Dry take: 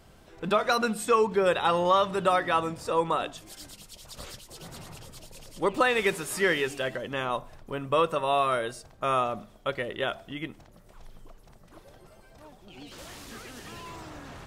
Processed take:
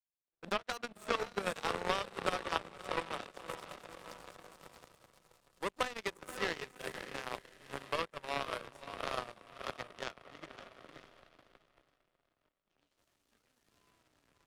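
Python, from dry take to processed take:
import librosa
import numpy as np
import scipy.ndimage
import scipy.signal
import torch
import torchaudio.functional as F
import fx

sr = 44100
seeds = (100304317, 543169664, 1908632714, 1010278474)

y = fx.echo_diffused(x, sr, ms=545, feedback_pct=61, wet_db=-4.5)
y = fx.power_curve(y, sr, exponent=3.0)
y = fx.band_squash(y, sr, depth_pct=70)
y = F.gain(torch.from_numpy(y), 1.0).numpy()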